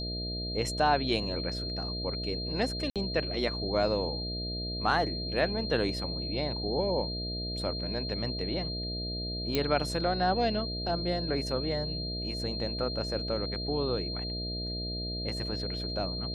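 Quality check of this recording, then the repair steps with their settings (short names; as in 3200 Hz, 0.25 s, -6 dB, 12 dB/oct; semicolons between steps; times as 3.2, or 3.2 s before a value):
buzz 60 Hz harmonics 11 -37 dBFS
tone 4200 Hz -36 dBFS
2.9–2.96 gap 57 ms
9.55 pop -13 dBFS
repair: de-click; de-hum 60 Hz, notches 11; notch 4200 Hz, Q 30; interpolate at 2.9, 57 ms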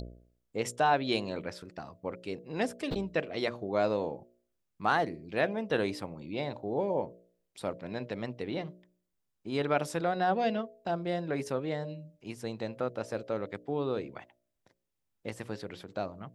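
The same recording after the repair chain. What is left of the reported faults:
none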